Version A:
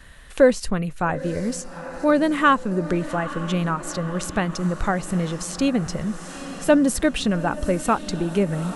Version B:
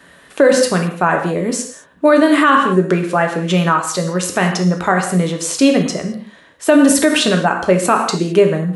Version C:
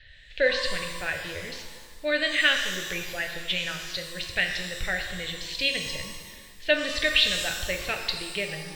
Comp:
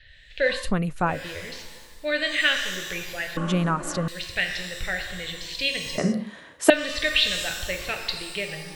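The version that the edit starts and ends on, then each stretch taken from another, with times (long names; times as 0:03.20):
C
0:00.61–0:01.16: punch in from A, crossfade 0.24 s
0:03.37–0:04.08: punch in from A
0:05.98–0:06.70: punch in from B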